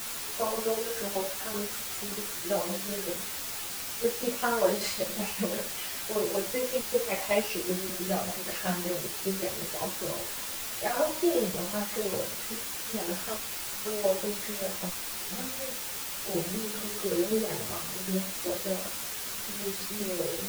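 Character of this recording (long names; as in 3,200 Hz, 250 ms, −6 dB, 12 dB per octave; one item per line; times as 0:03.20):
tremolo saw down 5.2 Hz, depth 70%
a quantiser's noise floor 6 bits, dither triangular
a shimmering, thickened sound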